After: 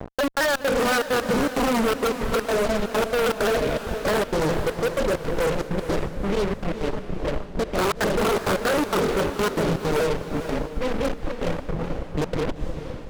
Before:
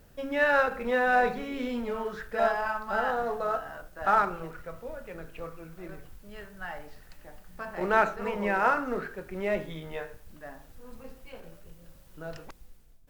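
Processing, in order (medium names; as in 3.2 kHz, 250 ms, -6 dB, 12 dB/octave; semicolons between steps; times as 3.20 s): local Wiener filter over 25 samples; steep low-pass 590 Hz 72 dB/octave; bass shelf 330 Hz -7 dB; in parallel at -1 dB: peak limiter -32.5 dBFS, peak gain reduction 11 dB; on the sum: compression 2:1, threshold -33 dBFS, peak gain reduction 5.5 dB; integer overflow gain 28.5 dB; trance gate "x.x.xx.xxx" 163 bpm -60 dB; fuzz box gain 55 dB, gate -54 dBFS; on a send: echo that smears into a reverb 463 ms, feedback 45%, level -9.5 dB; on the sum: vibrato with a chosen wave saw down 4.9 Hz, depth 100 cents; trim -7 dB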